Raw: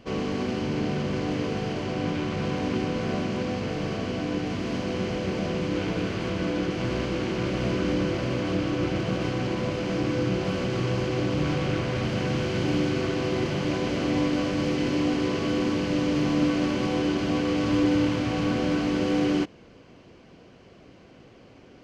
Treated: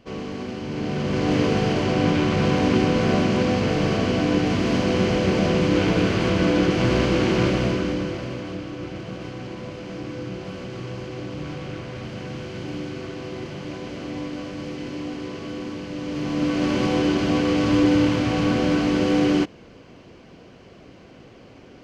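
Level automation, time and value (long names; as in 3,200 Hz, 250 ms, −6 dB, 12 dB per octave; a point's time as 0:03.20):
0:00.62 −3 dB
0:01.36 +8 dB
0:07.43 +8 dB
0:07.94 0 dB
0:08.66 −6.5 dB
0:15.95 −6.5 dB
0:16.76 +4.5 dB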